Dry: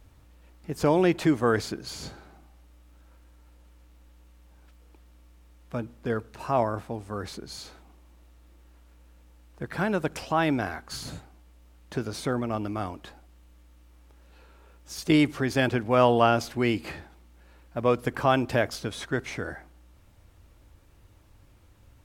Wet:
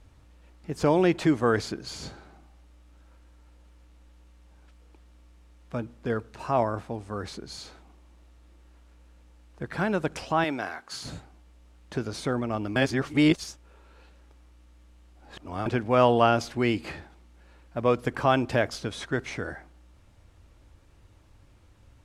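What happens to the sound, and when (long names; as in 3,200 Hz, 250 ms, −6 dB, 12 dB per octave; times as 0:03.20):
0:10.44–0:11.04: high-pass filter 510 Hz 6 dB per octave
0:12.76–0:15.66: reverse
whole clip: low-pass filter 9,300 Hz 12 dB per octave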